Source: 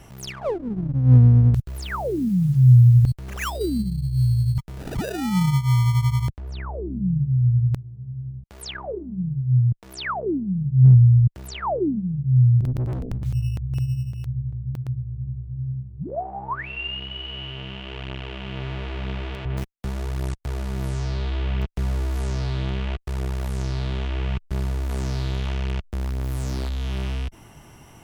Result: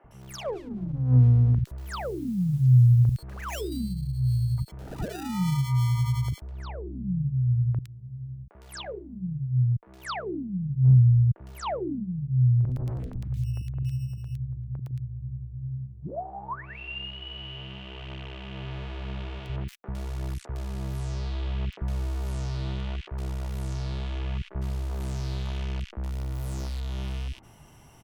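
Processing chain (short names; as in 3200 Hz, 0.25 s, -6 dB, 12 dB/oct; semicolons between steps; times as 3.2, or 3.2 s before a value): three bands offset in time mids, lows, highs 40/110 ms, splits 320/1800 Hz; gain -5 dB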